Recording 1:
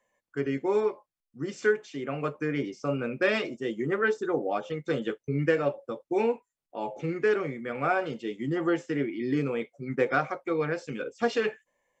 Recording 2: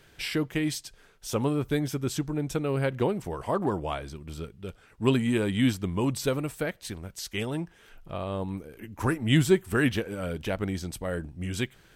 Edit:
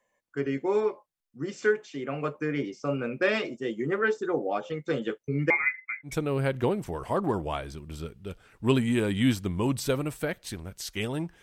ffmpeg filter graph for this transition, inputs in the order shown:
-filter_complex "[0:a]asettb=1/sr,asplit=3[a][b][c];[a]atrim=end=5.504[d];[b]atrim=start=5.5:end=6.15,asetpts=PTS-STARTPTS,afade=t=in:d=0.004:c=qsin,afade=t=out:st=0.646:d=0.004:c=qsin,lowpass=f=2.2k:t=q:w=0.5098,lowpass=f=2.2k:t=q:w=0.6013,lowpass=f=2.2k:t=q:w=0.9,lowpass=f=2.2k:t=q:w=2.563,afreqshift=-2600[e];[c]atrim=start=6.146[f];[d][e]acrossfade=d=0.004:c1=hsin:c2=qsin[g];[g][f]acrossfade=d=0.004:c1=qsin:c2=hsin,apad=whole_dur=11.42,atrim=end=11.42,atrim=end=6.15,asetpts=PTS-STARTPTS[h];[1:a]atrim=start=2.41:end=7.8,asetpts=PTS-STARTPTS[i];[h][i]acrossfade=d=0.12:c1=tri:c2=tri"

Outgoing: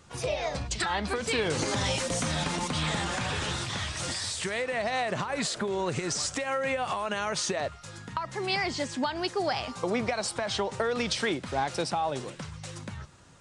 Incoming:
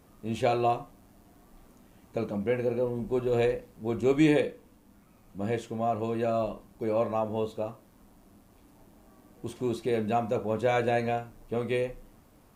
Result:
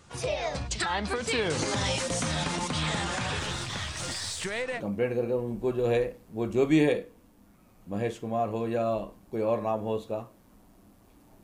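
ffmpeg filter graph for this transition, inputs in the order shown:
-filter_complex "[0:a]asettb=1/sr,asplit=3[a][b][c];[a]atrim=end=3.394[d];[b]atrim=start=3.39:end=4.81,asetpts=PTS-STARTPTS,afade=t=in:d=0.004:c=qsin,afade=t=out:st=1.416:d=0.004:c=qsin,aeval=exprs='if(lt(val(0),0),0.708*val(0),val(0))':c=same[e];[c]atrim=start=4.806[f];[d][e]acrossfade=d=0.004:c1=hsin:c2=qsin[g];[g][f]acrossfade=d=0.004:c1=qsin:c2=hsin,apad=whole_dur=11.43,atrim=end=11.43,atrim=end=4.81,asetpts=PTS-STARTPTS[h];[1:a]atrim=start=2.23:end=8.91,asetpts=PTS-STARTPTS[i];[h][i]acrossfade=d=0.06:c1=tri:c2=tri"

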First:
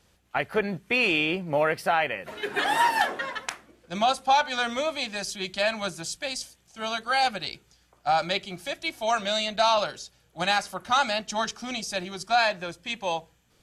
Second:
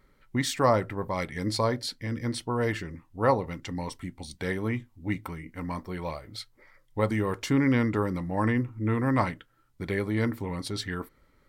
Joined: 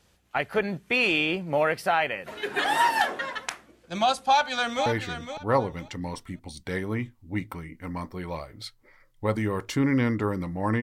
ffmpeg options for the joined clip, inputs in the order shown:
-filter_complex "[0:a]apad=whole_dur=10.82,atrim=end=10.82,atrim=end=4.862[a];[1:a]atrim=start=2.598:end=8.56[b];[a][b]acrossfade=d=0.004:c1=hsin:c2=hsin,asplit=2[c][d];[d]afade=t=in:st=4.21:d=0.01,afade=t=out:st=4.86:d=0.01,aecho=0:1:510|1020|1530:0.354813|0.0709627|0.0141925[e];[c][e]amix=inputs=2:normalize=0"

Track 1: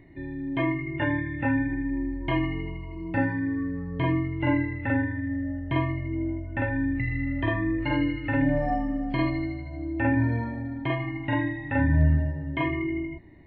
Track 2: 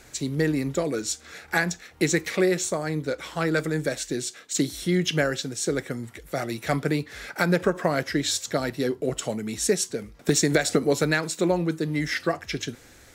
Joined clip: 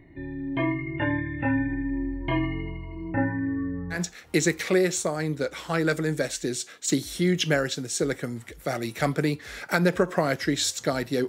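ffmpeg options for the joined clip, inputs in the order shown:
-filter_complex "[0:a]asettb=1/sr,asplit=3[a][b][c];[a]atrim=end=3.124[d];[b]atrim=start=3.12:end=4,asetpts=PTS-STARTPTS,afade=t=in:d=0.004:c=qsin,afade=t=out:st=0.876:d=0.004:c=qsin,lowpass=f=2k:w=0.5412,lowpass=f=2k:w=1.3066[e];[c]atrim=start=3.996[f];[d][e]acrossfade=d=0.004:c1=hsin:c2=qsin[g];[g][f]acrossfade=d=0.004:c1=qsin:c2=hsin,apad=whole_dur=11.28,atrim=end=11.28,atrim=end=4,asetpts=PTS-STARTPTS[h];[1:a]atrim=start=1.57:end=8.95,asetpts=PTS-STARTPTS[i];[h][i]acrossfade=d=0.1:c1=tri:c2=tri"

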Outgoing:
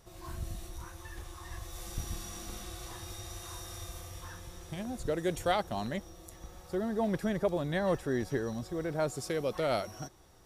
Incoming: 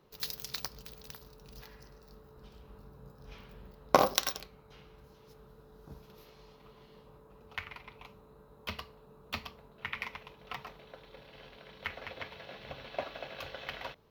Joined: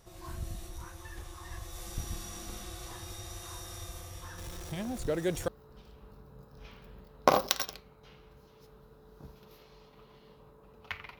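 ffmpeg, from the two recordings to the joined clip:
-filter_complex "[0:a]asettb=1/sr,asplit=3[a][b][c];[a]atrim=end=4.384[d];[b]atrim=start=4.38:end=5.48,asetpts=PTS-STARTPTS,afade=t=in:d=0.004:c=qsin,afade=t=out:st=1.096:d=0.004:c=qsin,aeval=exprs='val(0)+0.5*0.00708*sgn(val(0))':c=same[e];[c]atrim=start=5.476[f];[d][e]acrossfade=d=0.004:c1=hsin:c2=qsin[g];[g][f]acrossfade=d=0.004:c1=qsin:c2=hsin,apad=whole_dur=11.19,atrim=end=11.19,atrim=end=5.482[h];[1:a]atrim=start=2.148:end=7.86[i];[h][i]acrossfade=d=0.004:c1=hsin:c2=hsin"

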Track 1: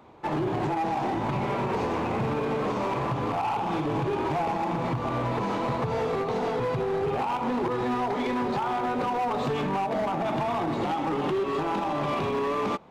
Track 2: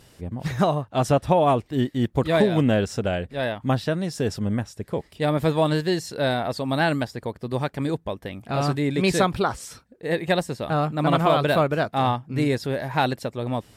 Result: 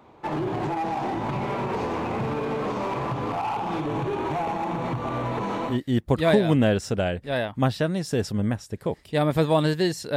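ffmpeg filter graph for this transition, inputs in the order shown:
-filter_complex "[0:a]asettb=1/sr,asplit=3[a][b][c];[a]atrim=end=3.814[d];[b]atrim=start=3.81:end=5.8,asetpts=PTS-STARTPTS,afade=t=in:d=0.004:c=qsin,afade=t=out:st=1.986:d=0.004:c=qsin,bandreject=f=4.9k:w=7.4[e];[c]atrim=start=5.796[f];[d][e]acrossfade=d=0.004:c1=hsin:c2=qsin[g];[g][f]acrossfade=d=0.004:c1=qsin:c2=hsin,apad=whole_dur=10.16,atrim=end=10.16,atrim=end=5.8,asetpts=PTS-STARTPTS[h];[1:a]atrim=start=1.71:end=6.23,asetpts=PTS-STARTPTS[i];[h][i]acrossfade=d=0.16:c1=tri:c2=tri"

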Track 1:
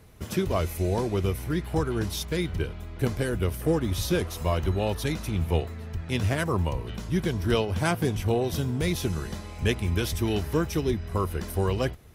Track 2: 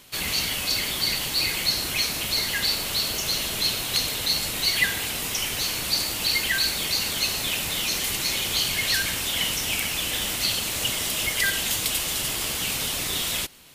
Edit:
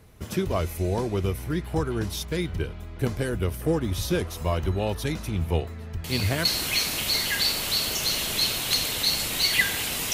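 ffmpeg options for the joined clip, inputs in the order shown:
-filter_complex "[1:a]asplit=2[a][b];[0:a]apad=whole_dur=10.13,atrim=end=10.13,atrim=end=6.452[c];[b]atrim=start=1.678:end=5.36[d];[a]atrim=start=1.27:end=1.68,asetpts=PTS-STARTPTS,volume=-8dB,afade=t=in:d=0.004:c=hsin,afade=t=out:st=0.406:d=0.004:c=hsin,adelay=6040[e];[c][d]acrossfade=d=0.004:c1=hsin:c2=hsin[f];[f][e]amix=inputs=2:normalize=0"

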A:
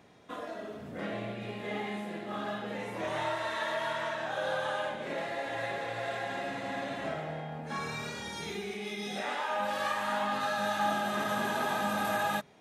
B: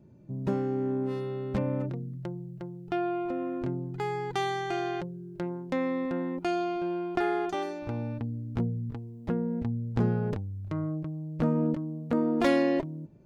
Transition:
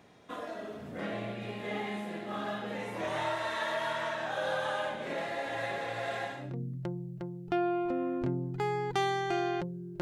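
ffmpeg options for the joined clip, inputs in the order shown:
-filter_complex "[0:a]apad=whole_dur=10.01,atrim=end=10.01,atrim=end=6.6,asetpts=PTS-STARTPTS[a];[1:a]atrim=start=1.64:end=5.41,asetpts=PTS-STARTPTS[b];[a][b]acrossfade=d=0.36:c1=qua:c2=qua"

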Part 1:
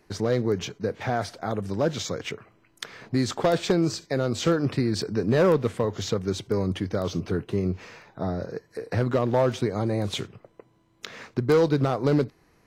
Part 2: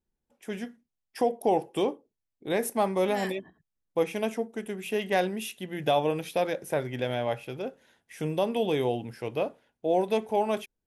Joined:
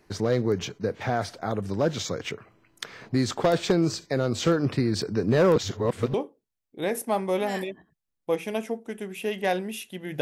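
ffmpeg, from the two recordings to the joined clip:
-filter_complex "[0:a]apad=whole_dur=10.21,atrim=end=10.21,asplit=2[a][b];[a]atrim=end=5.562[c];[b]atrim=start=5.558:end=6.142,asetpts=PTS-STARTPTS,areverse[d];[1:a]atrim=start=1.818:end=5.89[e];[c][d]acrossfade=d=0.004:c1=hsin:c2=hsin[f];[f][e]acrossfade=d=0.004:c1=hsin:c2=hsin"

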